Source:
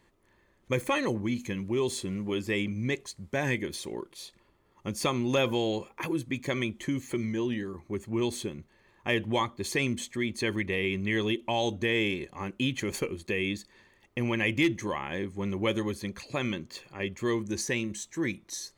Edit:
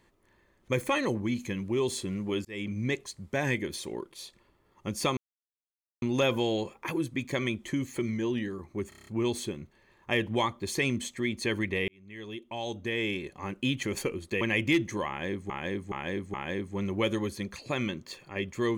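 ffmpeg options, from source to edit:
-filter_complex "[0:a]asplit=14[a][b][c][d][e][f][g][h][i][j][k][l][m][n];[a]atrim=end=2.45,asetpts=PTS-STARTPTS,afade=t=out:st=2.446:d=0.004:c=hsin[o];[b]atrim=start=2.45:end=5.17,asetpts=PTS-STARTPTS,afade=t=in:d=0.29,afade=t=out:st=2.716:d=0.004:c=hsin,apad=pad_dur=0.85[p];[c]atrim=start=5.17:end=8.072,asetpts=PTS-STARTPTS,afade=t=in:d=0.004:c=hsin[q];[d]atrim=start=8.038:end=8.072[r];[e]atrim=start=8.038:end=8.072[s];[f]atrim=start=8.038:end=8.072[t];[g]atrim=start=8.038:end=8.072[u];[h]atrim=start=8.038:end=8.072[v];[i]atrim=start=8.038:end=10.85,asetpts=PTS-STARTPTS,afade=t=out:st=2.808:d=0.004:c=hsin[w];[j]atrim=start=10.85:end=13.382,asetpts=PTS-STARTPTS,afade=t=in:d=1.69[x];[k]atrim=start=14.308:end=15.402[y];[l]atrim=start=14.978:end=15.402[z];[m]atrim=start=14.978:end=15.402[aa];[n]atrim=start=14.978[ab];[o][p][q]concat=n=3:v=0:a=1[ac];[ac][r]acrossfade=d=0.004:c1=hsin:c2=hsin[ad];[ad][s]acrossfade=d=0.004:c1=hsin:c2=hsin[ae];[ae][t]acrossfade=d=0.004:c1=hsin:c2=hsin[af];[af][u]acrossfade=d=0.004:c1=hsin:c2=hsin[ag];[ag][v]acrossfade=d=0.004:c1=hsin:c2=hsin[ah];[w][x]concat=n=2:v=0:a=1[ai];[ah][ai]acrossfade=d=0.004:c1=hsin:c2=hsin[aj];[aj][y]acrossfade=d=0.004:c1=hsin:c2=hsin[ak];[ak][z]acrossfade=d=0.004:c1=hsin:c2=hsin[al];[al][aa]acrossfade=d=0.004:c1=hsin:c2=hsin[am];[am][ab]acrossfade=d=0.004:c1=hsin:c2=hsin"

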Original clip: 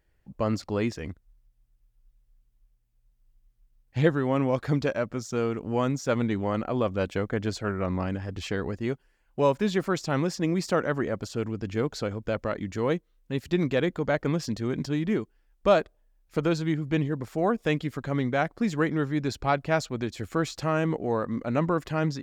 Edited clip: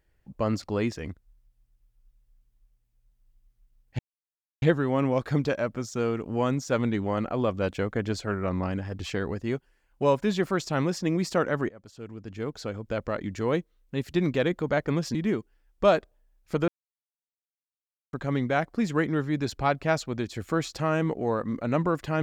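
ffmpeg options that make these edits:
-filter_complex "[0:a]asplit=6[a][b][c][d][e][f];[a]atrim=end=3.99,asetpts=PTS-STARTPTS,afade=t=out:st=3.986:d=0.004:c=hsin,apad=pad_dur=0.63[g];[b]atrim=start=3.99:end=11.06,asetpts=PTS-STARTPTS,afade=t=in:d=0.004:c=hsin,afade=t=out:st=7.066:d=0.004:c=hsin:silence=0.0749894[h];[c]atrim=start=11.06:end=14.522,asetpts=PTS-STARTPTS,afade=t=in:d=1.54:silence=0.0749894[i];[d]atrim=start=14.978:end=16.51,asetpts=PTS-STARTPTS,afade=t=out:st=1.528:d=0.004:c=hsin[j];[e]atrim=start=16.51:end=17.96,asetpts=PTS-STARTPTS,volume=0[k];[f]atrim=start=17.96,asetpts=PTS-STARTPTS,afade=t=in:d=0.004:c=hsin[l];[g][h][i]concat=n=3:v=0:a=1[m];[j][k][l]concat=n=3:v=0:a=1[n];[m][n]acrossfade=d=0.004:c1=hsin:c2=hsin"

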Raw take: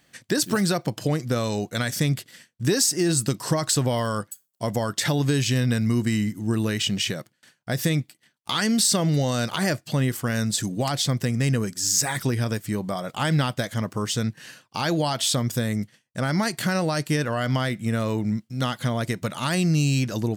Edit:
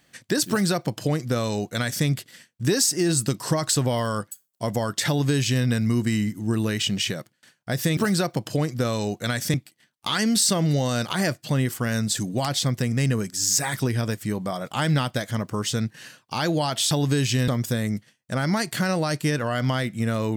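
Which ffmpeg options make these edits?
-filter_complex "[0:a]asplit=5[a][b][c][d][e];[a]atrim=end=7.972[f];[b]atrim=start=0.478:end=2.052[g];[c]atrim=start=7.968:end=15.342[h];[d]atrim=start=5.078:end=5.652[i];[e]atrim=start=15.338[j];[f][g]acrossfade=d=0.004:c1=hsin:c2=hsin[k];[k][h]acrossfade=d=0.004:c1=hsin:c2=hsin[l];[l][i]acrossfade=d=0.004:c1=hsin:c2=hsin[m];[m][j]acrossfade=d=0.004:c1=hsin:c2=hsin"

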